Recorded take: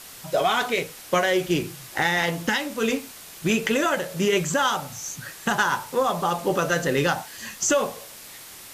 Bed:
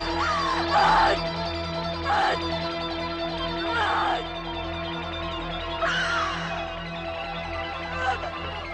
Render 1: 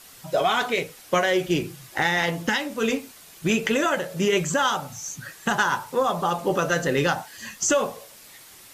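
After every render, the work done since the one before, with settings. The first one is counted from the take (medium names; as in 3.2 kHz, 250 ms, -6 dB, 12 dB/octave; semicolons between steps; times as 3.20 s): noise reduction 6 dB, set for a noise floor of -43 dBFS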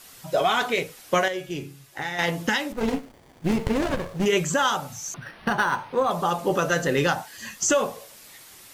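1.28–2.19 s: feedback comb 140 Hz, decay 0.46 s, mix 70%; 2.72–4.26 s: sliding maximum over 33 samples; 5.14–6.11 s: decimation joined by straight lines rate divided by 6×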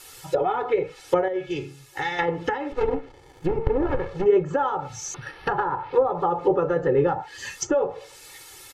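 low-pass that closes with the level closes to 840 Hz, closed at -19.5 dBFS; comb 2.3 ms, depth 97%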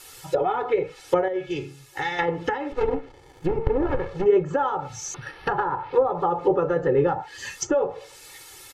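no audible change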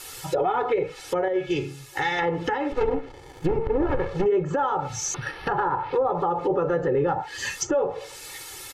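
in parallel at -1 dB: compression, threshold -30 dBFS, peak gain reduction 16 dB; on the sum: peak limiter -15 dBFS, peak gain reduction 9.5 dB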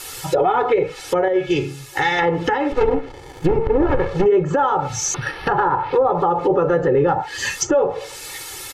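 trim +6.5 dB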